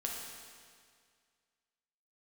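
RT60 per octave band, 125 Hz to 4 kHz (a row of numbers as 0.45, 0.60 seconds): 2.0, 2.0, 2.0, 2.0, 2.0, 1.9 seconds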